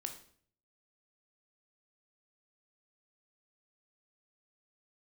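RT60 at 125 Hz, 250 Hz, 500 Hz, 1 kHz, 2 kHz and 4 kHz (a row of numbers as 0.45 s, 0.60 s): 0.80 s, 0.65 s, 0.60 s, 0.50 s, 0.50 s, 0.50 s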